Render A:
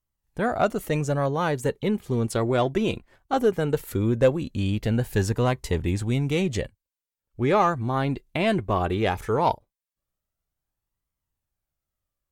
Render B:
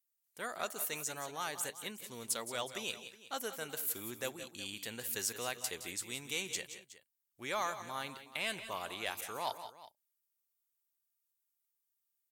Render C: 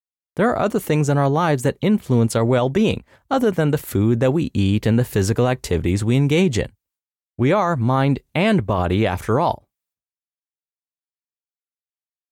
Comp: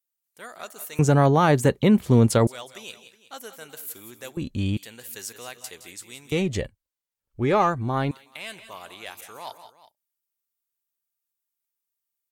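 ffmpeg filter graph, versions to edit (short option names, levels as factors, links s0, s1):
-filter_complex "[0:a]asplit=2[s0][s1];[1:a]asplit=4[s2][s3][s4][s5];[s2]atrim=end=0.992[s6];[2:a]atrim=start=0.988:end=2.472[s7];[s3]atrim=start=2.468:end=4.372[s8];[s0]atrim=start=4.368:end=4.772[s9];[s4]atrim=start=4.768:end=6.322[s10];[s1]atrim=start=6.318:end=8.112[s11];[s5]atrim=start=8.108[s12];[s6][s7]acrossfade=d=0.004:c1=hsin:c2=hsin[s13];[s13][s8]acrossfade=d=0.004:c1=hsin:c2=hsin[s14];[s14][s9]acrossfade=d=0.004:c1=hsin:c2=hsin[s15];[s15][s10]acrossfade=d=0.004:c1=hsin:c2=hsin[s16];[s16][s11]acrossfade=d=0.004:c1=hsin:c2=hsin[s17];[s17][s12]acrossfade=d=0.004:c1=hsin:c2=hsin"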